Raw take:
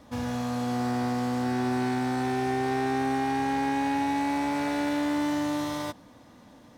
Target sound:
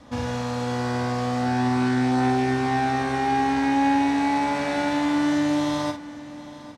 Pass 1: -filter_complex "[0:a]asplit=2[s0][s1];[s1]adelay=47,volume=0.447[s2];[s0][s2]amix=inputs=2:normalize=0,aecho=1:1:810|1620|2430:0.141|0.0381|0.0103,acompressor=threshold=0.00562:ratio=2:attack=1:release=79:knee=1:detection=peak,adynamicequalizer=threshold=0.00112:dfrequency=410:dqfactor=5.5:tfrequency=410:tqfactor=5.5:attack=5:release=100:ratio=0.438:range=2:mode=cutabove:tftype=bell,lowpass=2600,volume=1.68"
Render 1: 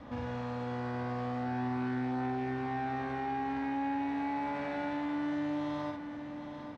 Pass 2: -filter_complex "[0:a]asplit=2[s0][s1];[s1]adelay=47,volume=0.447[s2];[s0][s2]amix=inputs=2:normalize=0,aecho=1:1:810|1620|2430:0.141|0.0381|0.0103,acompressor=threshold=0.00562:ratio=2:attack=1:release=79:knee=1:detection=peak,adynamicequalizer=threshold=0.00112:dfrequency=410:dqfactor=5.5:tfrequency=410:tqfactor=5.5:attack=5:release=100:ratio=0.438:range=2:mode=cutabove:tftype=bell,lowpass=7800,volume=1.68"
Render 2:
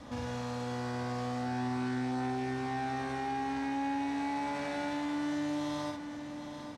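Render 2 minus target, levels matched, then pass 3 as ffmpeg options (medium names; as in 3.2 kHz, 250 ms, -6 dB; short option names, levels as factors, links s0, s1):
compression: peak gain reduction +14 dB
-filter_complex "[0:a]asplit=2[s0][s1];[s1]adelay=47,volume=0.447[s2];[s0][s2]amix=inputs=2:normalize=0,aecho=1:1:810|1620|2430:0.141|0.0381|0.0103,adynamicequalizer=threshold=0.00112:dfrequency=410:dqfactor=5.5:tfrequency=410:tqfactor=5.5:attack=5:release=100:ratio=0.438:range=2:mode=cutabove:tftype=bell,lowpass=7800,volume=1.68"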